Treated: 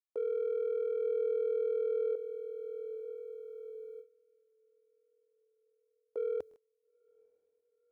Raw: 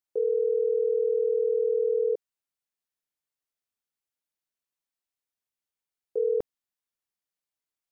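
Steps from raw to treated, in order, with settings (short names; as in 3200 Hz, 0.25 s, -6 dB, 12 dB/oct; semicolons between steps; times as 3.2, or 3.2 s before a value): in parallel at -6.5 dB: soft clip -27.5 dBFS, distortion -11 dB; on the sum: bell 80 Hz +8 dB 0.77 oct; on a send: diffused feedback echo 0.919 s, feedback 61%, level -10.5 dB; on the sum: gate with hold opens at -27 dBFS; tone controls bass -12 dB, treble +8 dB; stuck buffer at 6.49, samples 1024, times 2; gain -9 dB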